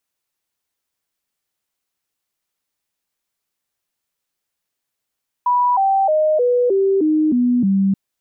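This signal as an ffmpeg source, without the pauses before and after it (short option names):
-f lavfi -i "aevalsrc='0.237*clip(min(mod(t,0.31),0.31-mod(t,0.31))/0.005,0,1)*sin(2*PI*981*pow(2,-floor(t/0.31)/3)*mod(t,0.31))':d=2.48:s=44100"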